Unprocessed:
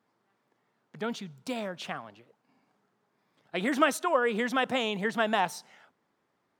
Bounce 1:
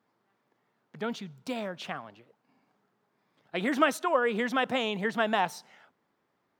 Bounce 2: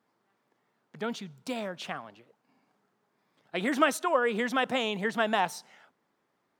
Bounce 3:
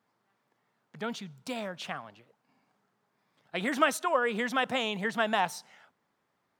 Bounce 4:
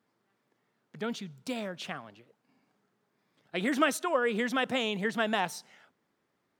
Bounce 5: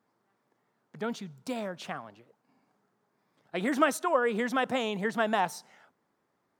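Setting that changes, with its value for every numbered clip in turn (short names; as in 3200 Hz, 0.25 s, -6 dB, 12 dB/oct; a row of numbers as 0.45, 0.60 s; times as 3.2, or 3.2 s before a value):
bell, frequency: 8900, 81, 340, 890, 3000 Hz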